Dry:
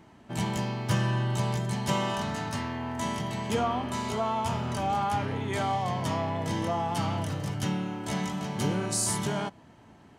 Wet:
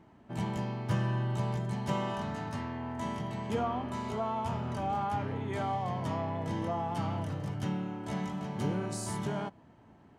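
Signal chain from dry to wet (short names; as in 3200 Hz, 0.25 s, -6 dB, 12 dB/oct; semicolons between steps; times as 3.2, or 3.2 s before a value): high shelf 2600 Hz -11 dB; gain -3.5 dB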